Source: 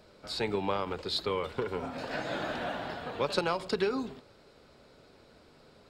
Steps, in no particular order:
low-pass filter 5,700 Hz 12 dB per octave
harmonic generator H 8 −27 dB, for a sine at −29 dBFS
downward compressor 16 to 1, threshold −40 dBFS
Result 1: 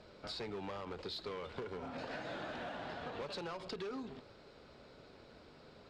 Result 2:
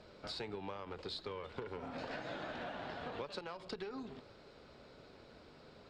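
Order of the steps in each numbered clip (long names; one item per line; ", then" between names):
harmonic generator, then downward compressor, then low-pass filter
downward compressor, then harmonic generator, then low-pass filter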